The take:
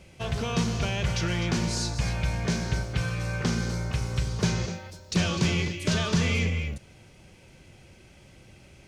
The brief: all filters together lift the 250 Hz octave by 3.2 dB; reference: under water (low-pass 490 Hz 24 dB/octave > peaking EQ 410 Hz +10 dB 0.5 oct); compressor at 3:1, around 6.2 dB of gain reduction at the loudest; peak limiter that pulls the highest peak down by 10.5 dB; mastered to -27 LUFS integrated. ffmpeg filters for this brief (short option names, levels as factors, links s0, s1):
-af "equalizer=f=250:t=o:g=3.5,acompressor=threshold=0.0398:ratio=3,alimiter=level_in=1.33:limit=0.0631:level=0:latency=1,volume=0.75,lowpass=f=490:w=0.5412,lowpass=f=490:w=1.3066,equalizer=f=410:t=o:w=0.5:g=10,volume=2.66"